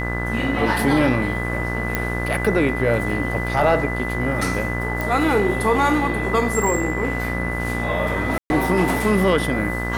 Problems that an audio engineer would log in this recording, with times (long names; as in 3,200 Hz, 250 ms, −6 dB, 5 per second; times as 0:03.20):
mains buzz 60 Hz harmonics 35 −26 dBFS
whistle 2,000 Hz −27 dBFS
0:01.95: click −6 dBFS
0:05.01: click
0:08.38–0:08.50: drop-out 121 ms